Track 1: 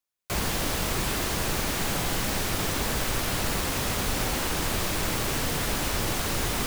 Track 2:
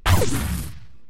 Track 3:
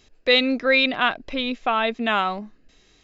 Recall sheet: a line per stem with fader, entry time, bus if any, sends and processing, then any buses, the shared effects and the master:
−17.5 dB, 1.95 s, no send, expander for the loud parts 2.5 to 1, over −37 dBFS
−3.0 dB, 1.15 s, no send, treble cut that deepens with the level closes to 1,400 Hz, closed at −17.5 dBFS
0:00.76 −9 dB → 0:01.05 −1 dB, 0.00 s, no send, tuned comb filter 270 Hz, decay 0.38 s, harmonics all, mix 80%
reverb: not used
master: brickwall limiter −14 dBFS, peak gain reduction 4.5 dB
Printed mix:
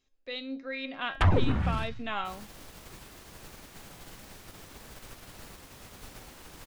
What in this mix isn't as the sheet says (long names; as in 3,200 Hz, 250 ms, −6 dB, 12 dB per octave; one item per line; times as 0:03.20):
as on the sheet